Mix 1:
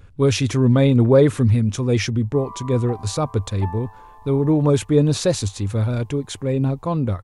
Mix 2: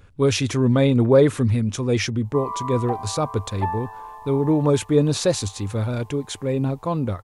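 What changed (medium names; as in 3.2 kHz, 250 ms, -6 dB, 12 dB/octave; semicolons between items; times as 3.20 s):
background +7.5 dB; master: add bass shelf 170 Hz -6 dB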